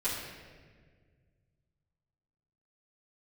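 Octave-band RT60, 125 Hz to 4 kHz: 3.0 s, 2.3 s, 2.0 s, 1.4 s, 1.5 s, 1.2 s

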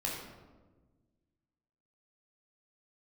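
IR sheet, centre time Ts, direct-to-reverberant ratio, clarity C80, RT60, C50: 60 ms, -3.5 dB, 4.0 dB, 1.3 s, 1.5 dB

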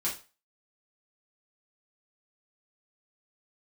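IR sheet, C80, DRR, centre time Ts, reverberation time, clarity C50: 15.0 dB, -7.0 dB, 25 ms, 0.35 s, 9.0 dB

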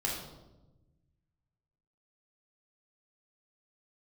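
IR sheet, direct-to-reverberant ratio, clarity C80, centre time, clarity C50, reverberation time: -3.5 dB, 5.5 dB, 52 ms, 2.5 dB, 1.0 s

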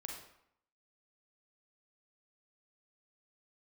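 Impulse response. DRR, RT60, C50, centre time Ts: 0.0 dB, 0.70 s, 3.0 dB, 41 ms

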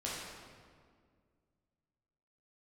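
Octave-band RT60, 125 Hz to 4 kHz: 2.6 s, 2.5 s, 2.1 s, 1.8 s, 1.5 s, 1.3 s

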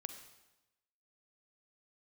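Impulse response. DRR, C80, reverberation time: 7.5 dB, 10.0 dB, 1.0 s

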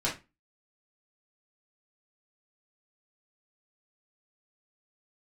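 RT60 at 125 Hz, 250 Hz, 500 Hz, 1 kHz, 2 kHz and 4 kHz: 0.30 s, 0.30 s, 0.25 s, 0.25 s, 0.25 s, 0.20 s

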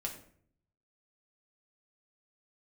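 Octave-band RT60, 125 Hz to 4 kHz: 1.1 s, 0.80 s, 0.65 s, 0.50 s, 0.50 s, 0.40 s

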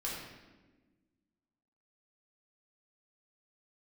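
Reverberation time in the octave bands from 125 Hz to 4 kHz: 1.8 s, 2.0 s, 1.5 s, 1.1 s, 1.1 s, 0.90 s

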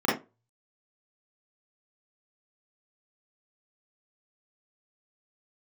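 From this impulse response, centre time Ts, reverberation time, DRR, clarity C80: 42 ms, 0.25 s, -8.5 dB, 14.0 dB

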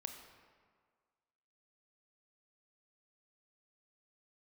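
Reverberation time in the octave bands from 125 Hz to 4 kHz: 1.5 s, 1.6 s, 1.7 s, 1.8 s, 1.5 s, 1.1 s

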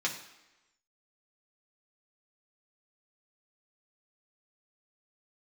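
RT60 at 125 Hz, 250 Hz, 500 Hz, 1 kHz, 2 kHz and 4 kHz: 0.80 s, 0.95 s, 1.0 s, 1.1 s, 1.0 s, 0.95 s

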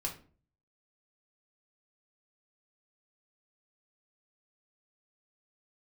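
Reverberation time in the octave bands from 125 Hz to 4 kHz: 0.70 s, 0.55 s, 0.45 s, 0.35 s, 0.35 s, 0.30 s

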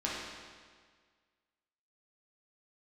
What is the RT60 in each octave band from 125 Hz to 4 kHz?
1.7 s, 1.7 s, 1.7 s, 1.7 s, 1.7 s, 1.5 s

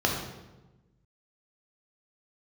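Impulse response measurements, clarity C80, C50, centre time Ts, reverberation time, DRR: 5.5 dB, 3.0 dB, 46 ms, 1.1 s, -1.0 dB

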